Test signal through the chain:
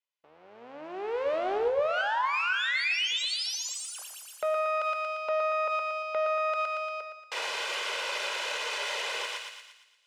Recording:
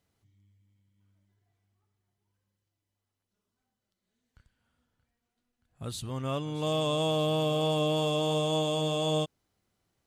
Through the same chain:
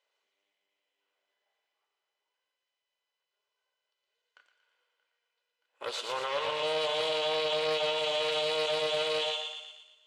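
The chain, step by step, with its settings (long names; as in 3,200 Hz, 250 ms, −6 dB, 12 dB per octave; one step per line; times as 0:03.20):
lower of the sound and its delayed copy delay 2 ms
downward compressor, threshold −27 dBFS
parametric band 2,800 Hz +6 dB 0.6 octaves
feedback echo with a high-pass in the loop 116 ms, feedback 61%, high-pass 800 Hz, level −5 dB
leveller curve on the samples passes 1
high-pass filter 510 Hz 24 dB per octave
brickwall limiter −24.5 dBFS
high-frequency loss of the air 93 metres
coupled-rooms reverb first 0.77 s, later 2.6 s, from −26 dB, DRR 9 dB
highs frequency-modulated by the lows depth 0.14 ms
level +3.5 dB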